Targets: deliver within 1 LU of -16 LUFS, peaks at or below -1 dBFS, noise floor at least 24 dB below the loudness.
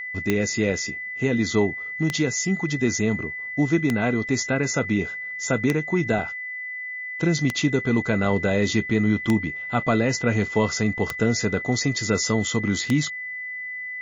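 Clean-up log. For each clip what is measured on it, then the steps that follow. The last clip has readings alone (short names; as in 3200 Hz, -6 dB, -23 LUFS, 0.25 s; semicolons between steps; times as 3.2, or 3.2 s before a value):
clicks 8; steady tone 2000 Hz; tone level -30 dBFS; loudness -23.5 LUFS; peak -3.5 dBFS; loudness target -16.0 LUFS
-> de-click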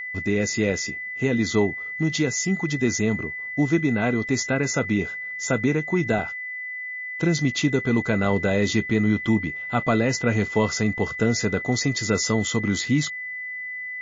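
clicks 0; steady tone 2000 Hz; tone level -30 dBFS
-> notch 2000 Hz, Q 30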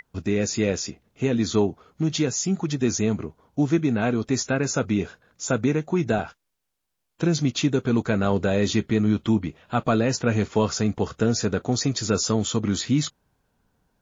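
steady tone none; loudness -24.0 LUFS; peak -7.5 dBFS; loudness target -16.0 LUFS
-> gain +8 dB; limiter -1 dBFS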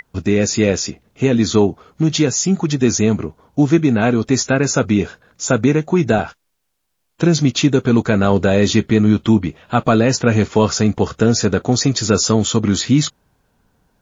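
loudness -16.0 LUFS; peak -1.0 dBFS; noise floor -70 dBFS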